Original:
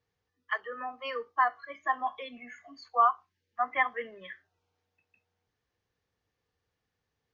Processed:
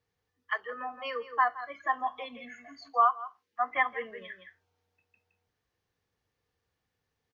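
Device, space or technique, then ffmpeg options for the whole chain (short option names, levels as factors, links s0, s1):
ducked delay: -filter_complex "[0:a]asettb=1/sr,asplit=3[s0][s1][s2];[s0]atrim=end=2.884[s3];[s1]atrim=start=2.88:end=3.71,asetpts=PTS-STARTPTS,afade=t=in:d=0.004:c=qsin,afade=t=out:st=0.826:d=0.004:c=qsin,highpass=220[s4];[s2]atrim=start=3.706[s5];[s3][s4]acrossfade=d=0.004:c1=hsin:c2=qsin[s6];[s6][s5]acrossfade=d=0.004:c1=qsin:c2=hsin,asplit=3[s7][s8][s9];[s8]adelay=167,volume=0.398[s10];[s9]apad=whole_len=330738[s11];[s10][s11]sidechaincompress=threshold=0.00631:ratio=8:attack=16:release=146[s12];[s7][s12]amix=inputs=2:normalize=0"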